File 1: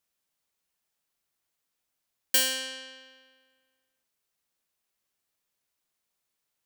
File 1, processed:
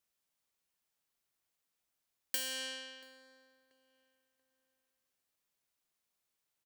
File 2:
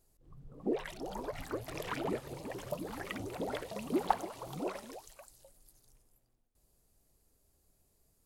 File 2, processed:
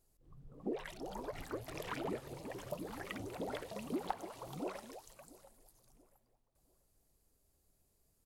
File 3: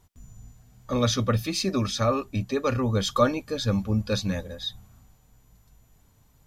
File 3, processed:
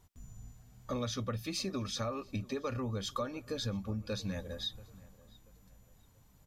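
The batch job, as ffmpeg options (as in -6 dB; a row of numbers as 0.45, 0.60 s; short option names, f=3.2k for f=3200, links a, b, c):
-filter_complex "[0:a]acompressor=threshold=-30dB:ratio=6,asplit=2[a][b];[b]adelay=684,lowpass=f=2.4k:p=1,volume=-21dB,asplit=2[c][d];[d]adelay=684,lowpass=f=2.4k:p=1,volume=0.38,asplit=2[e][f];[f]adelay=684,lowpass=f=2.4k:p=1,volume=0.38[g];[a][c][e][g]amix=inputs=4:normalize=0,volume=-3.5dB"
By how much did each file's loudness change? -12.5, -5.0, -11.5 LU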